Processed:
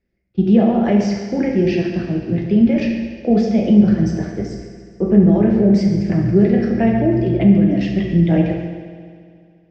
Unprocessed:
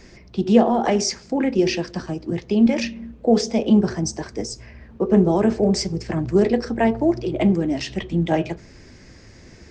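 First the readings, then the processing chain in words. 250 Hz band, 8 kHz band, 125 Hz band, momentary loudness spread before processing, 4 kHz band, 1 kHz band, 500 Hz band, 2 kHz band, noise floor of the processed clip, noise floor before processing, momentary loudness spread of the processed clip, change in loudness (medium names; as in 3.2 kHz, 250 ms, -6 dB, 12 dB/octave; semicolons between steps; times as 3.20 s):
+6.0 dB, under -10 dB, +8.5 dB, 12 LU, no reading, -2.5 dB, +1.5 dB, +0.5 dB, -51 dBFS, -46 dBFS, 11 LU, +5.0 dB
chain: gate -38 dBFS, range -30 dB; peaking EQ 1 kHz -12 dB 0.69 oct; two-slope reverb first 1 s, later 3.4 s, from -28 dB, DRR 1 dB; in parallel at +1 dB: peak limiter -12 dBFS, peak gain reduction 11.5 dB; on the sum: low-pass 2.5 kHz 12 dB/octave; on a send: multi-head delay 70 ms, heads first and second, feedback 72%, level -16.5 dB; on the sum: dynamic bell 110 Hz, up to +7 dB, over -26 dBFS, Q 0.87; trim -5 dB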